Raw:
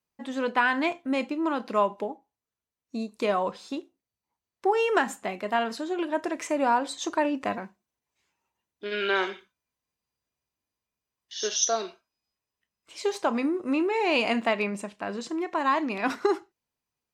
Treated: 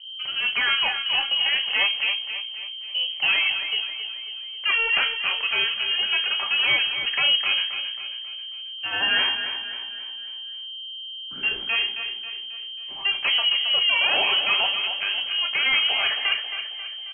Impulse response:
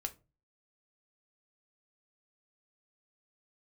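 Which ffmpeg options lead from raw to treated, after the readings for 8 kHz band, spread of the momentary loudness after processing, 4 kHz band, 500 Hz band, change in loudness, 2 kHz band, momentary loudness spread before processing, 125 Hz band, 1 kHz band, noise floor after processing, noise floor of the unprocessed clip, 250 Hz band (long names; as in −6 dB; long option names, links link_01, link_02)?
below −40 dB, 14 LU, +19.5 dB, −12.5 dB, +6.0 dB, +9.5 dB, 12 LU, can't be measured, −5.5 dB, −36 dBFS, below −85 dBFS, −20.5 dB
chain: -filter_complex "[0:a]asplit=2[link_01][link_02];[link_02]aeval=exprs='0.355*sin(PI/2*4.47*val(0)/0.355)':channel_layout=same,volume=-4.5dB[link_03];[link_01][link_03]amix=inputs=2:normalize=0,aeval=exprs='val(0)+0.0316*(sin(2*PI*60*n/s)+sin(2*PI*2*60*n/s)/2+sin(2*PI*3*60*n/s)/3+sin(2*PI*4*60*n/s)/4+sin(2*PI*5*60*n/s)/5)':channel_layout=same,aeval=exprs='0.447*(cos(1*acos(clip(val(0)/0.447,-1,1)))-cos(1*PI/2))+0.00708*(cos(4*acos(clip(val(0)/0.447,-1,1)))-cos(4*PI/2))+0.00708*(cos(8*acos(clip(val(0)/0.447,-1,1)))-cos(8*PI/2))':channel_layout=same,aecho=1:1:270|540|810|1080|1350:0.355|0.17|0.0817|0.0392|0.0188[link_04];[1:a]atrim=start_sample=2205[link_05];[link_04][link_05]afir=irnorm=-1:irlink=0,lowpass=frequency=2700:width_type=q:width=0.5098,lowpass=frequency=2700:width_type=q:width=0.6013,lowpass=frequency=2700:width_type=q:width=0.9,lowpass=frequency=2700:width_type=q:width=2.563,afreqshift=-3200,volume=-7dB"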